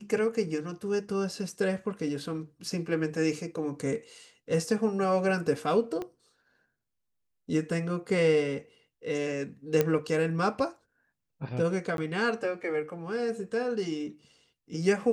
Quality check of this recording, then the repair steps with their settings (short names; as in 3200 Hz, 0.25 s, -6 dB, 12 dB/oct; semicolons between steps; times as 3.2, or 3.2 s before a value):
6.02 pop -23 dBFS
9.81 pop -11 dBFS
11.97–11.98 gap 12 ms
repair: de-click; interpolate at 11.97, 12 ms